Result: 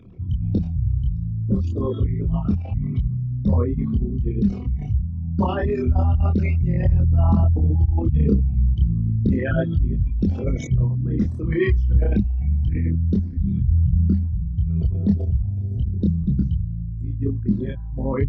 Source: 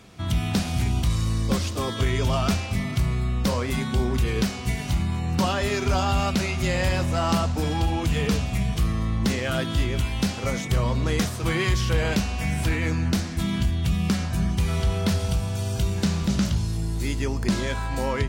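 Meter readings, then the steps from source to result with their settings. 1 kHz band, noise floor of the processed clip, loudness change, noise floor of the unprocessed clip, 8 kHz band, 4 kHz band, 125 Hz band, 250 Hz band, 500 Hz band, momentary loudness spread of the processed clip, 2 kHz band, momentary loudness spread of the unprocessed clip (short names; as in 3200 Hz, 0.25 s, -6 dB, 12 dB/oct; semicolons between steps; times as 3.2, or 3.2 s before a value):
-6.5 dB, -29 dBFS, +3.0 dB, -31 dBFS, under -20 dB, under -15 dB, +5.0 dB, +2.5 dB, -0.5 dB, 6 LU, -8.0 dB, 3 LU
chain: formant sharpening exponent 3; chorus voices 2, 0.29 Hz, delay 26 ms, depth 3.7 ms; gain +7.5 dB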